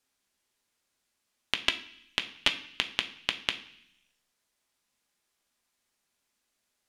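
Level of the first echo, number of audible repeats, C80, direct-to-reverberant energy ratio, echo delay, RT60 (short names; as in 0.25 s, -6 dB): none, none, 16.5 dB, 5.0 dB, none, 0.65 s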